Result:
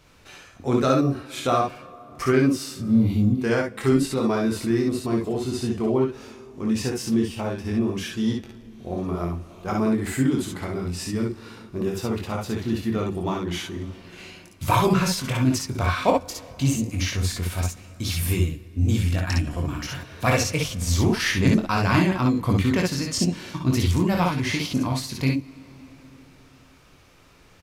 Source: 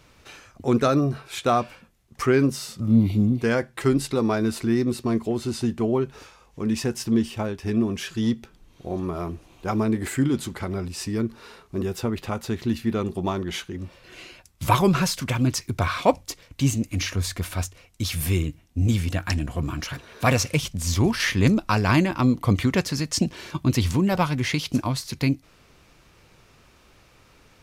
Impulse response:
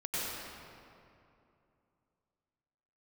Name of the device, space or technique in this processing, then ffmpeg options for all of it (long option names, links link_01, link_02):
compressed reverb return: -filter_complex "[0:a]aecho=1:1:23|58|69:0.531|0.596|0.596,asplit=2[link_01][link_02];[1:a]atrim=start_sample=2205[link_03];[link_02][link_03]afir=irnorm=-1:irlink=0,acompressor=threshold=-21dB:ratio=4,volume=-17dB[link_04];[link_01][link_04]amix=inputs=2:normalize=0,volume=-3dB"